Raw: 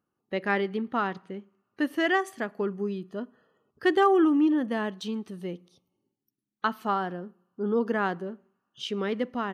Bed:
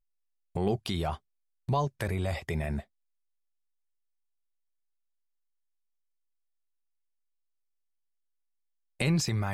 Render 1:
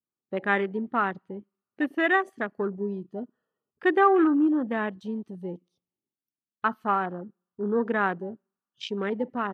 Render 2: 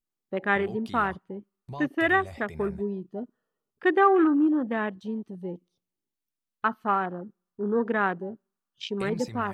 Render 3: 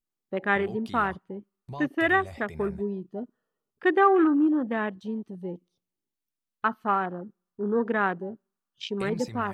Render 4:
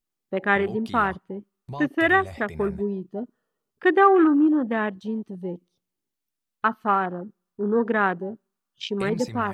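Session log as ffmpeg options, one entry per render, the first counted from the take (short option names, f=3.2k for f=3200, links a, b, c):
-af "afwtdn=0.0158,adynamicequalizer=threshold=0.0158:dfrequency=1500:dqfactor=0.84:tfrequency=1500:tqfactor=0.84:attack=5:release=100:ratio=0.375:range=2:mode=boostabove:tftype=bell"
-filter_complex "[1:a]volume=-11dB[a];[0:a][a]amix=inputs=2:normalize=0"
-af anull
-af "volume=3.5dB"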